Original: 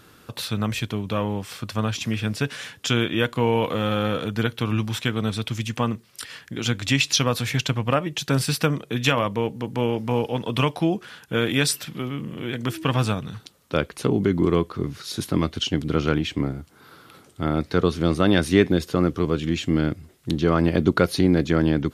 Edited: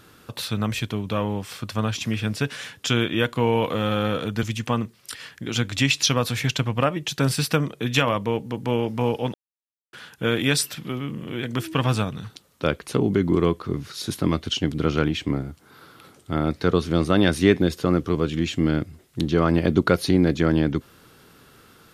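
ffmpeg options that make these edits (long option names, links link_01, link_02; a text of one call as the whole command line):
ffmpeg -i in.wav -filter_complex "[0:a]asplit=4[link_01][link_02][link_03][link_04];[link_01]atrim=end=4.432[link_05];[link_02]atrim=start=5.528:end=10.44,asetpts=PTS-STARTPTS,afade=type=out:start_time=4.908:duration=0.004:curve=hsin[link_06];[link_03]atrim=start=10.44:end=11.03,asetpts=PTS-STARTPTS,volume=0[link_07];[link_04]atrim=start=11.03,asetpts=PTS-STARTPTS,afade=type=in:duration=0.004:curve=hsin[link_08];[link_06][link_07][link_08]concat=n=3:v=0:a=1[link_09];[link_05][link_09]acrossfade=duration=0.004:curve1=hsin:curve2=hsin" out.wav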